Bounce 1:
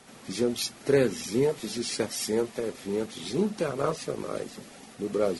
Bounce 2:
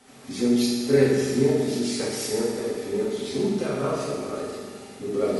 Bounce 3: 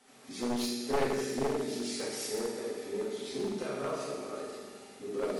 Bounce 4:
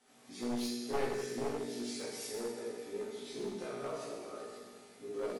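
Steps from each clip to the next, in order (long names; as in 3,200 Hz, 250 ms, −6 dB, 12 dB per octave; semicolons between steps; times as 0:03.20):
convolution reverb RT60 1.7 s, pre-delay 4 ms, DRR −6.5 dB; level −5 dB
wavefolder on the positive side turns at −18.5 dBFS; parametric band 61 Hz −12.5 dB 3 octaves; level −7 dB
double-tracking delay 17 ms −2 dB; level −7.5 dB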